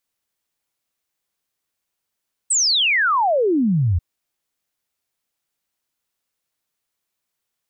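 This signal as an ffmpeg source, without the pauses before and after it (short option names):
-f lavfi -i "aevalsrc='0.188*clip(min(t,1.49-t)/0.01,0,1)*sin(2*PI*8500*1.49/log(79/8500)*(exp(log(79/8500)*t/1.49)-1))':d=1.49:s=44100"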